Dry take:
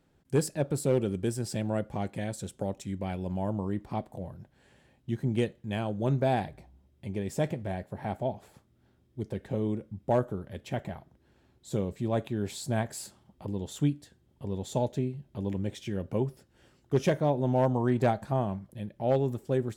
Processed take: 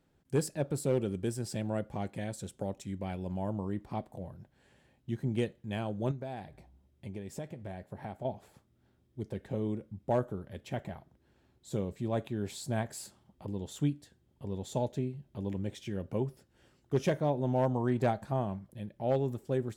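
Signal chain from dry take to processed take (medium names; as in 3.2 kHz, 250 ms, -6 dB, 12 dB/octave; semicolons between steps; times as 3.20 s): 6.11–8.25 s: compression 6:1, threshold -34 dBFS, peak gain reduction 11.5 dB; trim -3.5 dB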